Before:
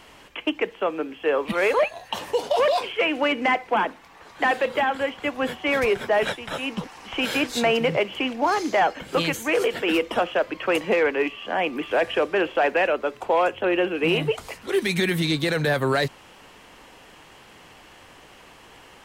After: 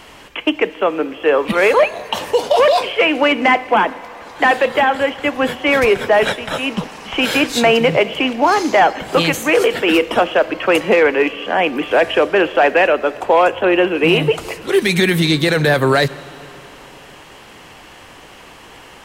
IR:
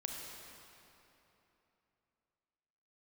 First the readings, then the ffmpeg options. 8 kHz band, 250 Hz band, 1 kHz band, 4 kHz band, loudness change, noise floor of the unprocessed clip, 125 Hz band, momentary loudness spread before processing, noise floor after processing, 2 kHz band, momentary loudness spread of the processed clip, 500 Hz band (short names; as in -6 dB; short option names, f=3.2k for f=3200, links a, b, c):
+8.5 dB, +8.5 dB, +8.5 dB, +8.5 dB, +8.5 dB, -49 dBFS, +8.5 dB, 6 LU, -41 dBFS, +8.5 dB, 8 LU, +8.5 dB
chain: -filter_complex "[0:a]asplit=2[a][b];[1:a]atrim=start_sample=2205[c];[b][c]afir=irnorm=-1:irlink=0,volume=-13.5dB[d];[a][d]amix=inputs=2:normalize=0,volume=7dB"